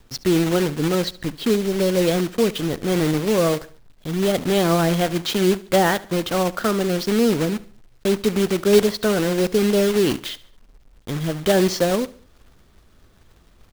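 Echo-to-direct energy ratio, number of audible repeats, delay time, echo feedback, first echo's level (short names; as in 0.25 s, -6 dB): -18.5 dB, 3, 71 ms, 42%, -19.5 dB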